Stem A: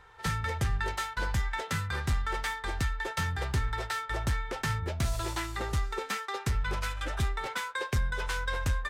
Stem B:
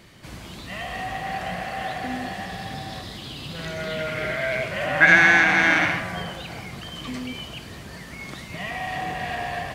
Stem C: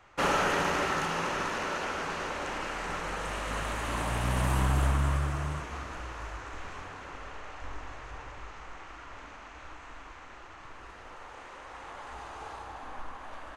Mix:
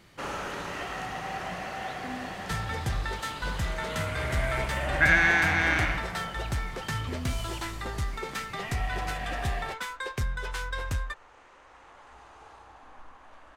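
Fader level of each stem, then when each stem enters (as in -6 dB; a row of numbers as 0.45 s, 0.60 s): -1.5 dB, -7.0 dB, -8.5 dB; 2.25 s, 0.00 s, 0.00 s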